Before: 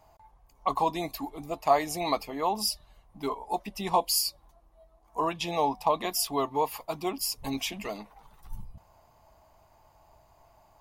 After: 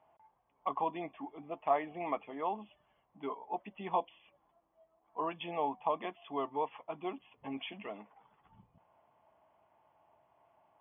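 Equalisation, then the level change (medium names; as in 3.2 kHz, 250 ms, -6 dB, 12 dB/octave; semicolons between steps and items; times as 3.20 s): high-pass 190 Hz 12 dB/octave; brick-wall FIR low-pass 3.5 kHz; distance through air 97 m; -7.0 dB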